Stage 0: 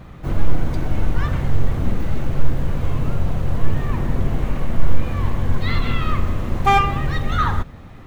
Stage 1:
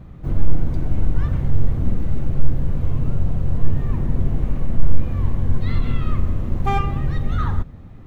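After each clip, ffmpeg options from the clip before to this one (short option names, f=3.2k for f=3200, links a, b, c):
-af "lowshelf=f=480:g=12,volume=-11dB"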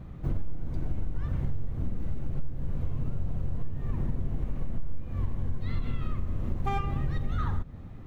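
-af "acompressor=threshold=-21dB:ratio=6,volume=-3dB"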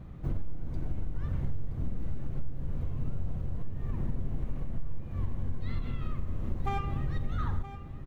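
-af "aecho=1:1:972:0.211,volume=-2.5dB"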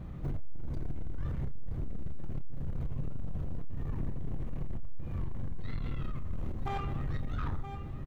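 -filter_complex "[0:a]alimiter=limit=-23dB:level=0:latency=1:release=182,asoftclip=type=tanh:threshold=-31.5dB,asplit=2[a][b];[b]adelay=28,volume=-10.5dB[c];[a][c]amix=inputs=2:normalize=0,volume=3dB"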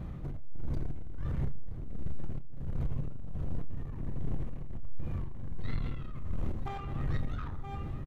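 -af "tremolo=f=1.4:d=0.61,aecho=1:1:72|144|216:0.0794|0.0397|0.0199,aresample=32000,aresample=44100,volume=3dB"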